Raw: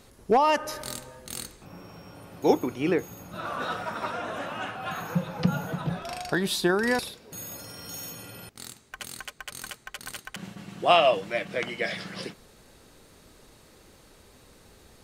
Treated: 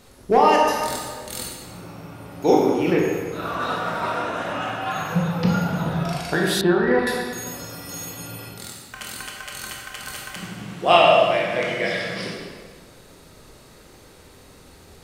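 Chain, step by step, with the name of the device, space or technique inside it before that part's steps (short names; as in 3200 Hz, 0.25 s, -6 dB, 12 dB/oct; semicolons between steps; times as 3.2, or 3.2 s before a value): stairwell (reverb RT60 1.6 s, pre-delay 16 ms, DRR -3 dB); 6.61–7.07 air absorption 470 m; gain +2 dB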